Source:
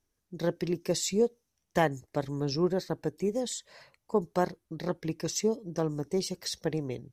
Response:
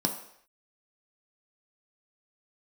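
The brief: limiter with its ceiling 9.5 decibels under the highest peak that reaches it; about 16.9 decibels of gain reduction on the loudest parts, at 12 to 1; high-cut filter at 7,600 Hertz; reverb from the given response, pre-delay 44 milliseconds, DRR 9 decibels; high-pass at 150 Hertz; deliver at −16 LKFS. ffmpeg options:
-filter_complex "[0:a]highpass=150,lowpass=7600,acompressor=threshold=-38dB:ratio=12,alimiter=level_in=10dB:limit=-24dB:level=0:latency=1,volume=-10dB,asplit=2[link_01][link_02];[1:a]atrim=start_sample=2205,adelay=44[link_03];[link_02][link_03]afir=irnorm=-1:irlink=0,volume=-16dB[link_04];[link_01][link_04]amix=inputs=2:normalize=0,volume=28.5dB"

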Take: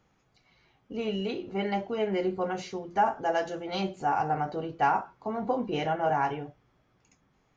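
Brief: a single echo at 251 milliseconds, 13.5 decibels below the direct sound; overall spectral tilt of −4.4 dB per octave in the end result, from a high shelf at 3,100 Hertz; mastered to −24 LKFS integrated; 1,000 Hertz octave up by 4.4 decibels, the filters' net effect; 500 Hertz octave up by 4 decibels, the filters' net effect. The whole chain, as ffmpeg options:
ffmpeg -i in.wav -af "equalizer=frequency=500:width_type=o:gain=4,equalizer=frequency=1000:width_type=o:gain=4.5,highshelf=frequency=3100:gain=-3.5,aecho=1:1:251:0.211,volume=2dB" out.wav

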